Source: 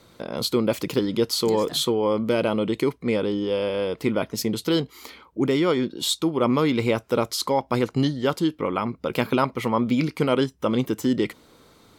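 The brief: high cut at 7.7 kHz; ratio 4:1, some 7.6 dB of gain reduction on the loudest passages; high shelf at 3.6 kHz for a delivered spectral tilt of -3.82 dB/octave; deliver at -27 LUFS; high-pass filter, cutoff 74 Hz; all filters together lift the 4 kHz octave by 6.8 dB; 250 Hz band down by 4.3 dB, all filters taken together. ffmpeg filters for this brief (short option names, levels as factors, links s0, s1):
-af "highpass=74,lowpass=7700,equalizer=f=250:t=o:g=-5.5,highshelf=f=3600:g=8.5,equalizer=f=4000:t=o:g=3,acompressor=threshold=0.0631:ratio=4,volume=1.19"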